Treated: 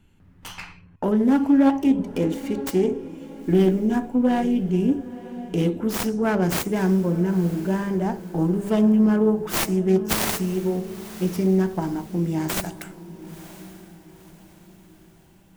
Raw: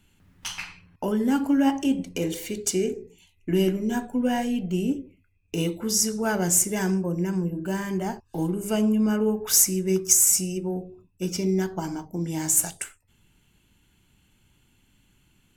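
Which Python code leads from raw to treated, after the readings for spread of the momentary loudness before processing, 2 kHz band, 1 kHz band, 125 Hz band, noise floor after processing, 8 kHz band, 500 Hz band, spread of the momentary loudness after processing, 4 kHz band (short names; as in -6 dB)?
15 LU, +2.0 dB, +3.5 dB, +5.0 dB, -52 dBFS, -13.0 dB, +4.5 dB, 19 LU, -2.0 dB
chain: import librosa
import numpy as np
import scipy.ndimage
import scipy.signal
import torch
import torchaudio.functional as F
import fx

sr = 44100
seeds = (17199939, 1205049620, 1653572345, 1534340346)

y = fx.self_delay(x, sr, depth_ms=0.42)
y = fx.high_shelf(y, sr, hz=2000.0, db=-12.0)
y = fx.echo_diffused(y, sr, ms=981, feedback_pct=42, wet_db=-15.5)
y = F.gain(torch.from_numpy(y), 5.0).numpy()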